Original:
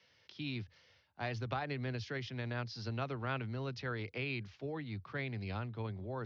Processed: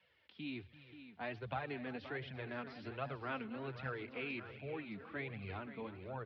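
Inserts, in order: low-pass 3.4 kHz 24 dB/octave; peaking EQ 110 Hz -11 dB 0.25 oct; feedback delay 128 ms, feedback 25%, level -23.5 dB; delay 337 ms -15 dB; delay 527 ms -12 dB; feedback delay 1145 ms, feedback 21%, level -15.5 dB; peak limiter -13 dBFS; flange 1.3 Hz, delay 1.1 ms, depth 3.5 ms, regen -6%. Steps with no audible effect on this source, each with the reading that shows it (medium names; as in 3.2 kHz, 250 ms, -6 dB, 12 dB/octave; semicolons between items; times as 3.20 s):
peak limiter -13 dBFS: peak at its input -24.5 dBFS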